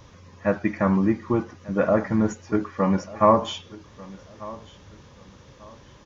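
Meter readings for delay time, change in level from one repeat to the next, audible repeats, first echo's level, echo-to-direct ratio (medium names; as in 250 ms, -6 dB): 1193 ms, -11.0 dB, 2, -20.0 dB, -19.5 dB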